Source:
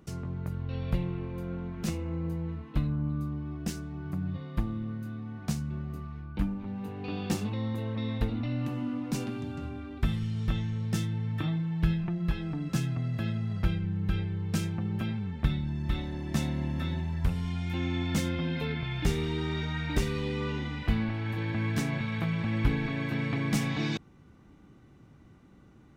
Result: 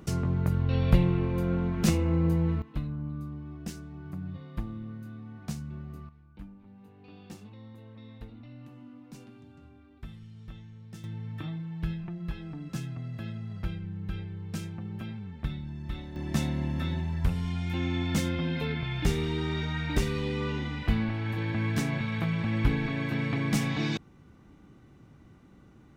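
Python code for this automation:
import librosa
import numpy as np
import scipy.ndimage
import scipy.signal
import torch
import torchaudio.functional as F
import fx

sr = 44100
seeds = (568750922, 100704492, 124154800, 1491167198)

y = fx.gain(x, sr, db=fx.steps((0.0, 8.0), (2.62, -4.5), (6.09, -15.5), (11.04, -6.0), (16.16, 1.0)))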